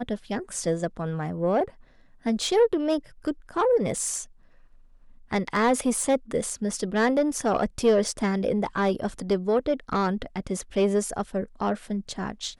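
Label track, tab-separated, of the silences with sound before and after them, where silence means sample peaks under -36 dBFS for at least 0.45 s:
1.680000	2.260000	silence
4.240000	5.310000	silence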